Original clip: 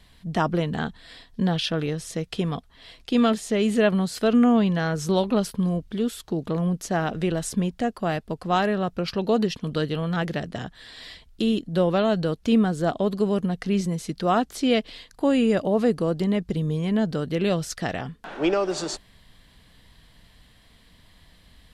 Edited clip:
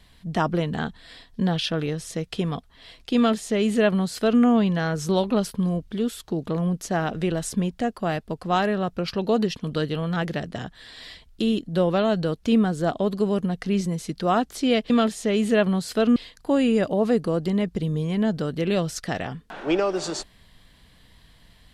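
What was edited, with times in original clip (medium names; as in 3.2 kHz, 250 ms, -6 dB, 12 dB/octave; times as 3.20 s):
3.16–4.42 s: copy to 14.90 s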